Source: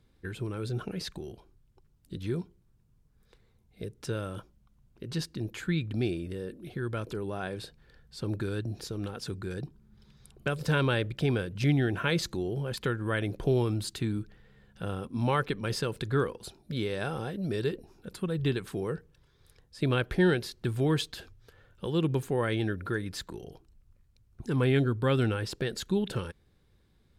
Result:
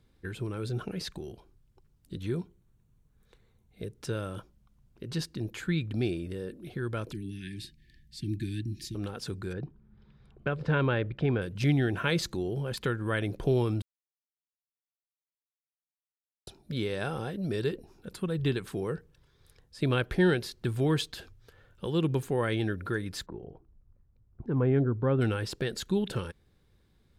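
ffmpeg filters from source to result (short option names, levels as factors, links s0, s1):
-filter_complex "[0:a]asettb=1/sr,asplit=3[s0][s1][s2];[s0]atrim=end=2.204[s3];[s1]atrim=start=2.2:end=3.9,asetpts=PTS-STARTPTS,afade=t=in:d=0.004:c=qsin,afade=t=out:st=1.696:d=0.004:c=qsin,bandreject=f=5000:w=6.3[s4];[s2]atrim=start=3.896[s5];[s3][s4]acrossfade=d=0.004:c1=hsin:c2=qsin[s6];[s6][s5]acrossfade=d=0.004:c1=qsin:c2=hsin,asettb=1/sr,asplit=3[s7][s8][s9];[s7]atrim=end=7.124[s10];[s8]atrim=start=7.12:end=8.95,asetpts=PTS-STARTPTS,afade=t=in:d=0.004:c=qsin,afade=t=out:st=1.826:d=0.004:c=qsin,asuperstop=centerf=790:order=20:qfactor=0.57[s11];[s9]atrim=start=8.946[s12];[s10][s11]acrossfade=d=0.004:c1=hsin:c2=qsin[s13];[s13][s12]acrossfade=d=0.004:c1=qsin:c2=hsin,asettb=1/sr,asplit=3[s14][s15][s16];[s14]atrim=end=9.534[s17];[s15]atrim=start=9.53:end=11.42,asetpts=PTS-STARTPTS,afade=t=in:d=0.004:c=qsin,afade=t=out:st=1.886:d=0.004:c=qsin,lowpass=2300[s18];[s16]atrim=start=11.416[s19];[s17][s18]acrossfade=d=0.004:c1=hsin:c2=qsin[s20];[s20][s19]acrossfade=d=0.004:c1=qsin:c2=hsin,asplit=3[s21][s22][s23];[s21]afade=t=out:st=23.25:d=0.02[s24];[s22]lowpass=1100,afade=t=in:st=23.25:d=0.02,afade=t=out:st=25.2:d=0.02[s25];[s23]afade=t=in:st=25.2:d=0.02[s26];[s24][s25][s26]amix=inputs=3:normalize=0,asplit=3[s27][s28][s29];[s27]atrim=end=13.82,asetpts=PTS-STARTPTS,afade=t=out:st=13.816:d=0.004:c=hsin[s30];[s28]atrim=start=13.82:end=16.47,asetpts=PTS-STARTPTS,volume=0[s31];[s29]atrim=start=16.47,asetpts=PTS-STARTPTS,afade=t=in:d=0.004:c=hsin[s32];[s30][s31][s32]concat=n=3:v=0:a=1"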